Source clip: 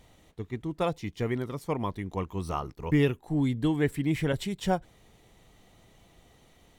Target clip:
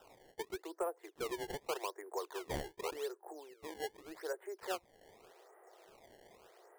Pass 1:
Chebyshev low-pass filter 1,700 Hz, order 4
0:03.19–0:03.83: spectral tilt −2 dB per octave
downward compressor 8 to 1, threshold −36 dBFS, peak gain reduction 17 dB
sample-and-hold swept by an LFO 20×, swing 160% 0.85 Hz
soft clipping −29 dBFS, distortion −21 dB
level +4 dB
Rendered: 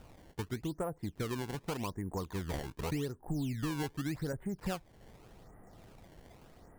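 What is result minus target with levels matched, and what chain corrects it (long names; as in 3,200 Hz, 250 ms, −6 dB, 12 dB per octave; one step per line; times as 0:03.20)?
250 Hz band +8.0 dB
Chebyshev low-pass filter 1,700 Hz, order 4
0:03.19–0:03.83: spectral tilt −2 dB per octave
downward compressor 8 to 1, threshold −36 dBFS, peak gain reduction 17 dB
Butterworth high-pass 350 Hz 96 dB per octave
sample-and-hold swept by an LFO 20×, swing 160% 0.85 Hz
soft clipping −29 dBFS, distortion −25 dB
level +4 dB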